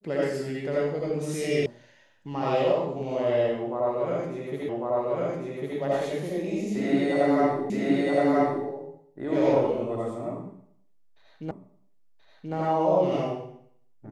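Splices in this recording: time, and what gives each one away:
1.66 s: sound stops dead
4.69 s: repeat of the last 1.1 s
7.70 s: repeat of the last 0.97 s
11.51 s: repeat of the last 1.03 s

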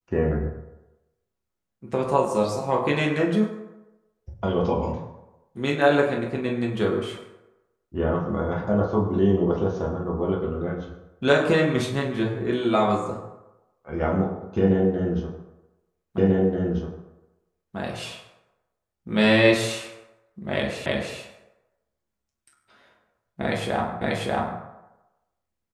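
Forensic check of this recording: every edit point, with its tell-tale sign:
16.18 s: repeat of the last 1.59 s
20.86 s: repeat of the last 0.32 s
24.01 s: repeat of the last 0.59 s

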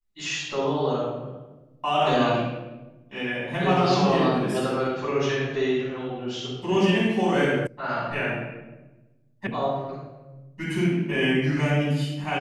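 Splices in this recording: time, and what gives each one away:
7.67 s: sound stops dead
9.47 s: sound stops dead

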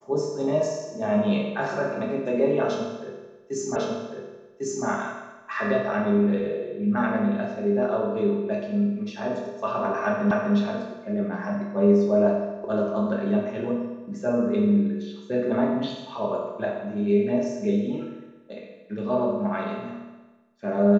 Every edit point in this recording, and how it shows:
3.76 s: repeat of the last 1.1 s
10.31 s: repeat of the last 0.25 s

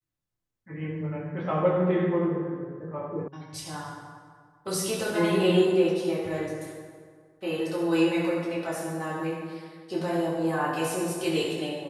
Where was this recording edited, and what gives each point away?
3.28 s: sound stops dead

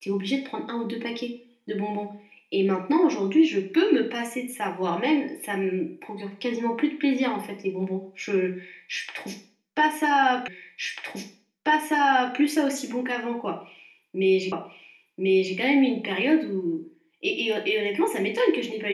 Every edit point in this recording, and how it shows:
10.48 s: repeat of the last 1.89 s
14.52 s: repeat of the last 1.04 s

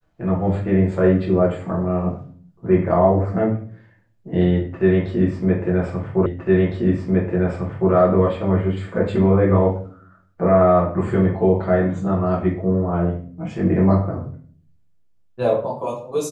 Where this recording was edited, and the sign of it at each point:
6.26 s: repeat of the last 1.66 s

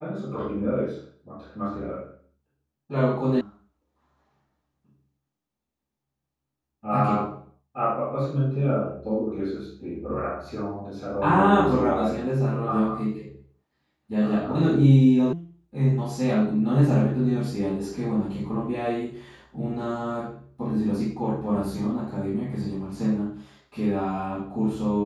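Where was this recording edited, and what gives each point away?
3.41 s: sound stops dead
15.33 s: sound stops dead

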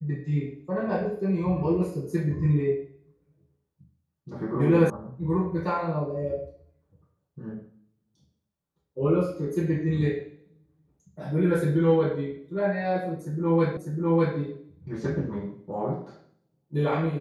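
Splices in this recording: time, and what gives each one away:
4.90 s: sound stops dead
13.77 s: repeat of the last 0.6 s

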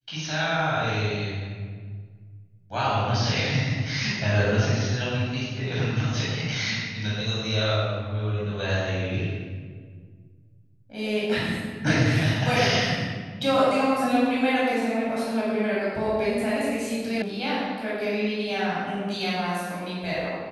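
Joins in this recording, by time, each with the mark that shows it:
17.22 s: sound stops dead

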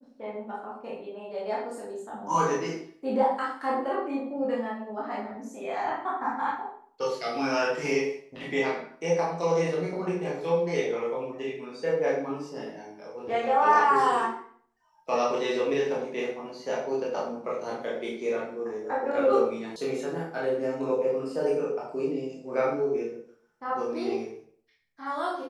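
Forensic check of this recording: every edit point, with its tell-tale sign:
19.76 s: sound stops dead

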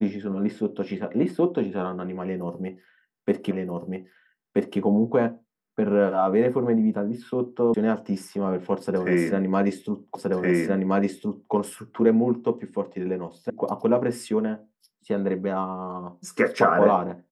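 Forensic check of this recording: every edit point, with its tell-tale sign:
3.51 s: repeat of the last 1.28 s
7.74 s: sound stops dead
10.15 s: repeat of the last 1.37 s
13.50 s: sound stops dead

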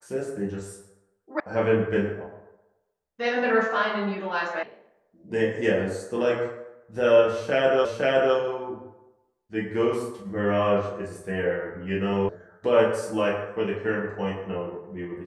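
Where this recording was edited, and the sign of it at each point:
1.40 s: sound stops dead
4.63 s: sound stops dead
7.85 s: repeat of the last 0.51 s
12.29 s: sound stops dead

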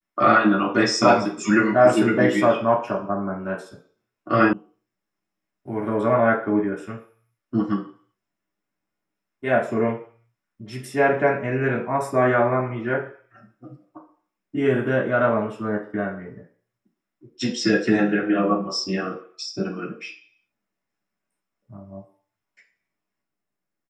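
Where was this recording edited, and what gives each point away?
4.53 s: sound stops dead

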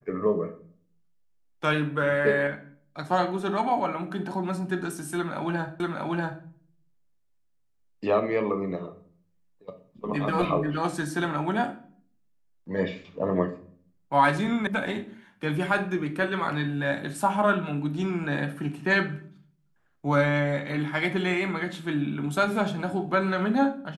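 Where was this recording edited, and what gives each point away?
5.80 s: repeat of the last 0.64 s
14.67 s: sound stops dead

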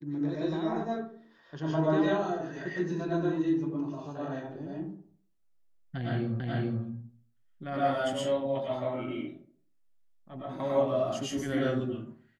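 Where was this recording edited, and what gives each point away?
6.40 s: repeat of the last 0.43 s

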